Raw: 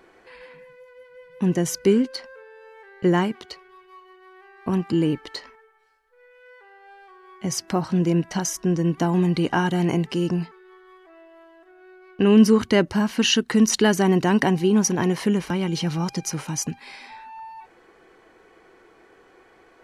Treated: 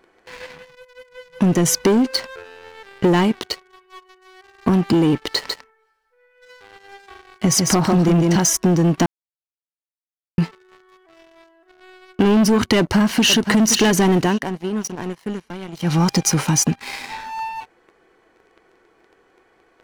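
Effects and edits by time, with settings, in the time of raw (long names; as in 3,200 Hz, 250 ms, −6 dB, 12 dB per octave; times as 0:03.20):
0:05.33–0:08.36: single-tap delay 149 ms −5 dB
0:09.06–0:10.38: silence
0:12.77–0:13.53: delay throw 520 ms, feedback 50%, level −13 dB
0:14.12–0:16.05: duck −18.5 dB, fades 0.26 s
whole clip: leveller curve on the samples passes 3; downward compressor, threshold −15 dBFS; level +2 dB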